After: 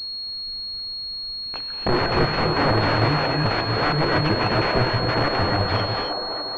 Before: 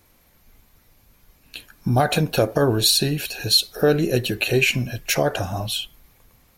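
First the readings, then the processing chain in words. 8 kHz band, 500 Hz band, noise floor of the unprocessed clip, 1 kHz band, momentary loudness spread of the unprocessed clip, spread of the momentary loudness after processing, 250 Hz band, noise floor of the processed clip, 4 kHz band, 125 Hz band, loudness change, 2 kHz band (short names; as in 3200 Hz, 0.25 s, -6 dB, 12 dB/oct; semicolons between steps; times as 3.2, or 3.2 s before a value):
under -25 dB, -1.0 dB, -58 dBFS, +6.5 dB, 11 LU, 8 LU, 0.0 dB, -31 dBFS, -1.0 dB, +1.0 dB, -1.5 dB, +2.0 dB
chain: reverb removal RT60 0.71 s; dynamic EQ 260 Hz, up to -6 dB, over -33 dBFS, Q 1.1; in parallel at -1 dB: limiter -16.5 dBFS, peak gain reduction 10.5 dB; on the sum: wrapped overs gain 14.5 dB; on a send: band-limited delay 0.565 s, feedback 52%, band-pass 690 Hz, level -3.5 dB; on the sum: non-linear reverb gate 0.3 s rising, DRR 1.5 dB; pulse-width modulation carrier 4300 Hz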